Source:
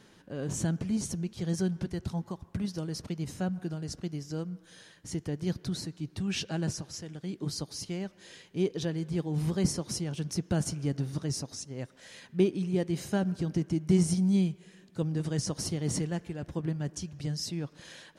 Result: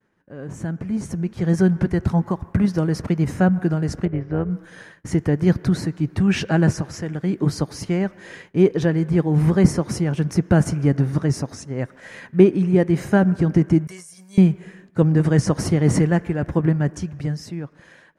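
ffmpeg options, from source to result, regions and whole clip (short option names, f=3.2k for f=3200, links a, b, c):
-filter_complex "[0:a]asettb=1/sr,asplit=3[a][b][c];[a]atrim=end=4.054[d];[b]atrim=start=4.05:end=4.5,asetpts=PTS-STARTPTS,afade=t=in:d=0.004:c=qsin,afade=t=out:st=0.446:d=0.004:c=qsin,lowpass=f=2.9k:w=0.5412,lowpass=f=2.9k:w=1.3066,tremolo=f=250:d=0.571[e];[c]atrim=start=4.496[f];[d][e]acrossfade=d=0.004:c1=hsin:c2=qsin[g];[g][f]acrossfade=d=0.004:c1=qsin:c2=hsin,asettb=1/sr,asplit=3[h][i][j];[h]atrim=end=13.874[k];[i]atrim=start=13.87:end=14.38,asetpts=PTS-STARTPTS,afade=t=in:d=0.004:c=qsin,afade=t=out:st=0.506:d=0.004:c=qsin,aderivative,aecho=1:1:1.8:0.64,atrim=end_sample=22491,acompressor=threshold=-43dB:ratio=8:attack=3.2:release=140:knee=1:detection=peak[l];[j]atrim=start=14.376[m];[k][l]acrossfade=d=0.004:c1=hsin:c2=qsin[n];[n][m]acrossfade=d=0.004:c1=qsin:c2=hsin,agate=range=-33dB:threshold=-50dB:ratio=3:detection=peak,highshelf=f=2.6k:t=q:w=1.5:g=-10,dynaudnorm=f=150:g=17:m=15dB"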